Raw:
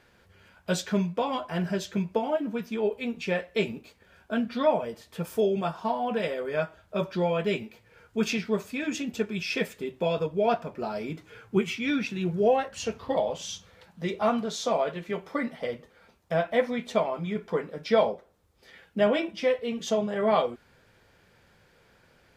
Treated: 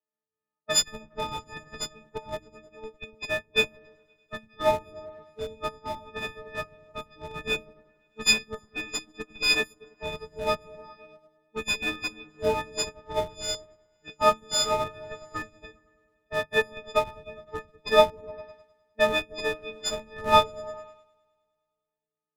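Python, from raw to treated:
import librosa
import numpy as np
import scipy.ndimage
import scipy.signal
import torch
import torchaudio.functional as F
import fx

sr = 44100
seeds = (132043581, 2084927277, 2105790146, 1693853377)

p1 = fx.freq_snap(x, sr, grid_st=6)
p2 = fx.weighting(p1, sr, curve='A')
p3 = fx.schmitt(p2, sr, flips_db=-21.0)
p4 = p2 + (p3 * 10.0 ** (-4.0 / 20.0))
p5 = fx.env_lowpass(p4, sr, base_hz=490.0, full_db=-22.5)
p6 = p5 + fx.echo_opening(p5, sr, ms=103, hz=200, octaves=1, feedback_pct=70, wet_db=-3, dry=0)
p7 = fx.upward_expand(p6, sr, threshold_db=-37.0, expansion=2.5)
y = p7 * 10.0 ** (4.0 / 20.0)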